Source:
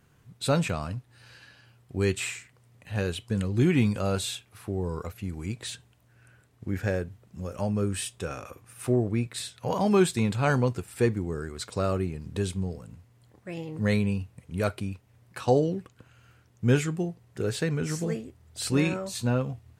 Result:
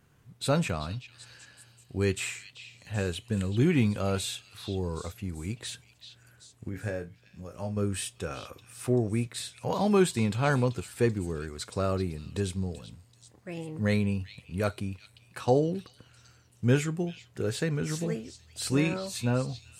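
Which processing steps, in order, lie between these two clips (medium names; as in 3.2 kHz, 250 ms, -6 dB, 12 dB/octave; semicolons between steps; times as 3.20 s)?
6.69–7.77 s: feedback comb 56 Hz, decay 0.18 s, harmonics all, mix 90%; on a send: repeats whose band climbs or falls 385 ms, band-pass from 3.7 kHz, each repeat 0.7 oct, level -8 dB; on the sum: trim -1.5 dB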